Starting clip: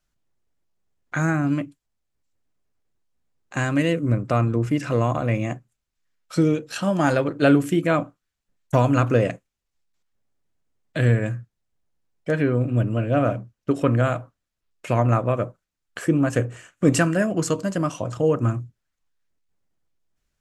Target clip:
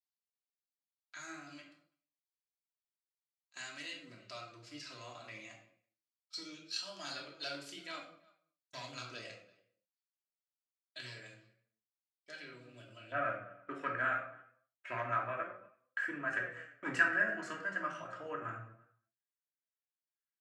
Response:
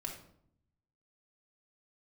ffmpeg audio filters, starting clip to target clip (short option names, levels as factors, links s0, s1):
-filter_complex "[0:a]volume=2.99,asoftclip=hard,volume=0.335,asplit=2[s0][s1];[s1]adelay=332.4,volume=0.0794,highshelf=f=4000:g=-7.48[s2];[s0][s2]amix=inputs=2:normalize=0,agate=range=0.178:threshold=0.01:ratio=16:detection=peak,asetnsamples=n=441:p=0,asendcmd='13.12 bandpass f 1700',bandpass=f=4500:t=q:w=4.4:csg=0[s3];[1:a]atrim=start_sample=2205,afade=t=out:st=0.32:d=0.01,atrim=end_sample=14553[s4];[s3][s4]afir=irnorm=-1:irlink=0,flanger=delay=3.6:depth=8.4:regen=57:speed=0.25:shape=triangular,asplit=2[s5][s6];[s6]adelay=27,volume=0.224[s7];[s5][s7]amix=inputs=2:normalize=0,volume=2.24"